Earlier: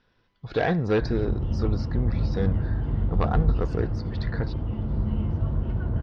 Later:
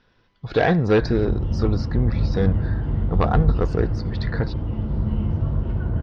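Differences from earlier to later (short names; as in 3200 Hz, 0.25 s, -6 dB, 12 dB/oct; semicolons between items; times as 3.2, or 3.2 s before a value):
speech +5.5 dB; background: send +6.5 dB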